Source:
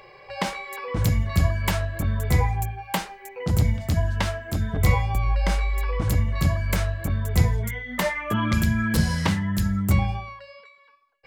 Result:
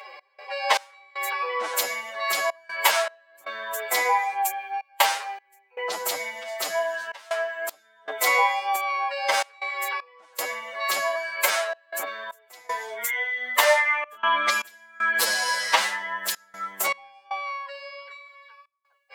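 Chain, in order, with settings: high-pass 580 Hz 24 dB/octave; time stretch by phase-locked vocoder 1.7×; trance gate "x.xx..xxxxxx" 78 bpm -24 dB; trim +7.5 dB

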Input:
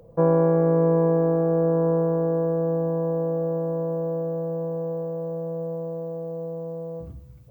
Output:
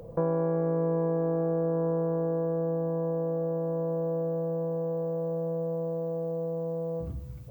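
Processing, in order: compression 2.5:1, threshold -37 dBFS, peak gain reduction 14.5 dB; trim +5.5 dB

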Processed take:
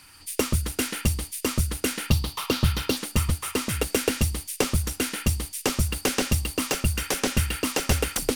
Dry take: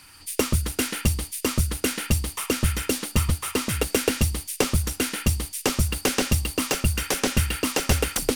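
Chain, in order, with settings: 2.10–2.97 s: graphic EQ 125/1000/2000/4000/8000 Hz +6/+6/-5/+10/-9 dB; trim -1.5 dB

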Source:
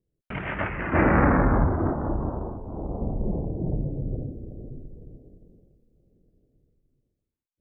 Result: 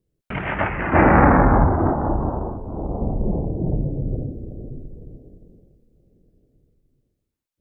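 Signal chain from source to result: dynamic bell 810 Hz, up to +6 dB, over -42 dBFS, Q 2.7; trim +5 dB

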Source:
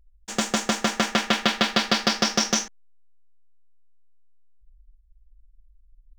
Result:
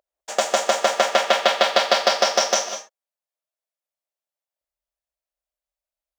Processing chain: resonant high-pass 600 Hz, resonance Q 4.9; gated-style reverb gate 220 ms rising, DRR 8 dB; trim +1 dB

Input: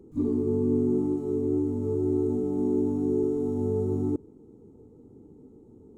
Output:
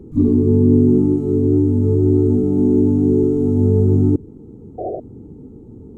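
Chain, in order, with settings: dynamic bell 1 kHz, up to -5 dB, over -44 dBFS, Q 0.92; painted sound noise, 4.78–5.00 s, 320–760 Hz -34 dBFS; tone controls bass +9 dB, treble -4 dB; trim +8.5 dB

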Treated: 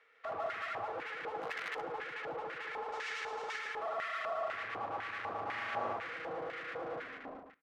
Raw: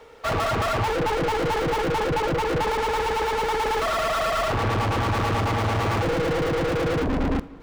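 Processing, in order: fade out at the end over 0.55 s; 2.92–3.59 s: peaking EQ 6.4 kHz +14.5 dB 1.5 oct; delay 146 ms -5.5 dB; 1.41–1.81 s: integer overflow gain 17 dB; band-stop 900 Hz, Q 5.3; 5.44–5.93 s: flutter echo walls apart 7.2 m, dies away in 1 s; LFO band-pass square 2 Hz 820–1900 Hz; trim -8 dB

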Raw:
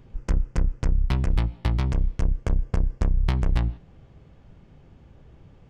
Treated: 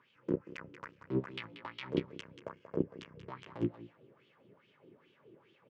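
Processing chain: high-pass 110 Hz 24 dB/octave; peaking EQ 740 Hz -12 dB 0.33 oct; peak limiter -22 dBFS, peak gain reduction 11 dB; wah-wah 2.4 Hz 340–3200 Hz, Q 3.5; on a send: delay 184 ms -10.5 dB; on the sum: upward expansion 2.5:1, over -48 dBFS; trim +15.5 dB

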